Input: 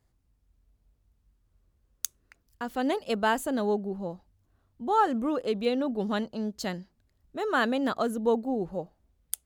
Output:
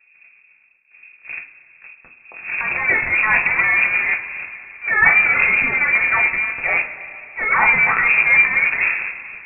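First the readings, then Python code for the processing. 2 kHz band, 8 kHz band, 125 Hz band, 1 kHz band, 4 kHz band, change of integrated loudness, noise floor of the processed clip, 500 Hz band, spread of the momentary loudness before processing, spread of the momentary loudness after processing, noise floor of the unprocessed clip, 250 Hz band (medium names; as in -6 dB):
+24.0 dB, under -40 dB, +3.0 dB, +6.0 dB, no reading, +14.5 dB, -54 dBFS, -5.5 dB, 13 LU, 19 LU, -72 dBFS, -9.5 dB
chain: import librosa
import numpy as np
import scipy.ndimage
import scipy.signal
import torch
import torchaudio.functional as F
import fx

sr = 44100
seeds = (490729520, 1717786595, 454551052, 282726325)

p1 = fx.dmg_wind(x, sr, seeds[0], corner_hz=100.0, level_db=-37.0)
p2 = scipy.signal.sosfilt(scipy.signal.butter(4, 72.0, 'highpass', fs=sr, output='sos'), p1)
p3 = fx.low_shelf(p2, sr, hz=480.0, db=-9.5)
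p4 = fx.hum_notches(p3, sr, base_hz=60, count=3)
p5 = fx.fuzz(p4, sr, gain_db=45.0, gate_db=-48.0)
p6 = p4 + (p5 * librosa.db_to_amplitude(-8.5))
p7 = fx.transient(p6, sr, attack_db=-10, sustain_db=11)
p8 = fx.rev_double_slope(p7, sr, seeds[1], early_s=0.3, late_s=3.2, knee_db=-18, drr_db=-0.5)
p9 = fx.freq_invert(p8, sr, carrier_hz=2600)
y = p9 * librosa.db_to_amplitude(2.0)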